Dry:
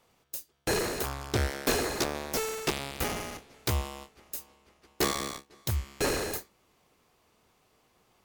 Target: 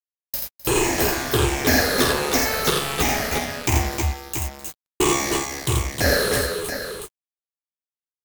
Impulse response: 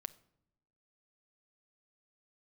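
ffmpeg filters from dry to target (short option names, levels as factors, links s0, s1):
-filter_complex "[0:a]afftfilt=real='re*pow(10,15/40*sin(2*PI*(0.67*log(max(b,1)*sr/1024/100)/log(2)-(-1.4)*(pts-256)/sr)))':imag='im*pow(10,15/40*sin(2*PI*(0.67*log(max(b,1)*sr/1024/100)/log(2)-(-1.4)*(pts-256)/sr)))':win_size=1024:overlap=0.75,adynamicequalizer=threshold=0.00398:dfrequency=1700:dqfactor=7.6:tfrequency=1700:tqfactor=7.6:attack=5:release=100:ratio=0.375:range=2:mode=boostabove:tftype=bell,asplit=2[s0][s1];[s1]acompressor=threshold=0.0141:ratio=10,volume=0.794[s2];[s0][s2]amix=inputs=2:normalize=0,aeval=exprs='val(0)+0.00501*(sin(2*PI*50*n/s)+sin(2*PI*2*50*n/s)/2+sin(2*PI*3*50*n/s)/3+sin(2*PI*4*50*n/s)/4+sin(2*PI*5*50*n/s)/5)':c=same,acrusher=bits=4:mix=0:aa=0.5,aecho=1:1:49|84|257|310|322|681:0.596|0.668|0.112|0.447|0.531|0.422,volume=1.33"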